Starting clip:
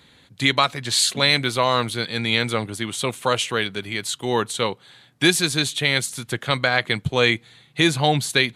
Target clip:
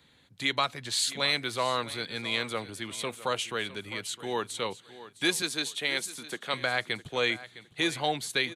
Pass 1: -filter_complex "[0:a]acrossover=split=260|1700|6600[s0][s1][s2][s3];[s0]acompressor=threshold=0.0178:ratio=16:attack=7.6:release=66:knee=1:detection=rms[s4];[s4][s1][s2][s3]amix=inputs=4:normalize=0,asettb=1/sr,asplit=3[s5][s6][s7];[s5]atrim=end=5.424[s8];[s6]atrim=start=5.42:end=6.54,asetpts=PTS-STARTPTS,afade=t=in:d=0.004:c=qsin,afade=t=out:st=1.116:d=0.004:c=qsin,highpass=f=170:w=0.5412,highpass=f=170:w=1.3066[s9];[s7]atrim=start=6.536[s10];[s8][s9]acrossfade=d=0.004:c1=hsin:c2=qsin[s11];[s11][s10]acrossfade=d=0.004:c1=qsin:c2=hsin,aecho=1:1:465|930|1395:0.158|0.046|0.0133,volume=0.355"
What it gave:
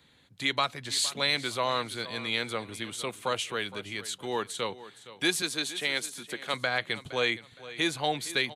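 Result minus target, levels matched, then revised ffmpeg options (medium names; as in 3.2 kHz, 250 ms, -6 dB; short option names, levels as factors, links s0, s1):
echo 194 ms early
-filter_complex "[0:a]acrossover=split=260|1700|6600[s0][s1][s2][s3];[s0]acompressor=threshold=0.0178:ratio=16:attack=7.6:release=66:knee=1:detection=rms[s4];[s4][s1][s2][s3]amix=inputs=4:normalize=0,asettb=1/sr,asplit=3[s5][s6][s7];[s5]atrim=end=5.424[s8];[s6]atrim=start=5.42:end=6.54,asetpts=PTS-STARTPTS,afade=t=in:d=0.004:c=qsin,afade=t=out:st=1.116:d=0.004:c=qsin,highpass=f=170:w=0.5412,highpass=f=170:w=1.3066[s9];[s7]atrim=start=6.536[s10];[s8][s9]acrossfade=d=0.004:c1=hsin:c2=qsin[s11];[s11][s10]acrossfade=d=0.004:c1=qsin:c2=hsin,aecho=1:1:659|1318|1977:0.158|0.046|0.0133,volume=0.355"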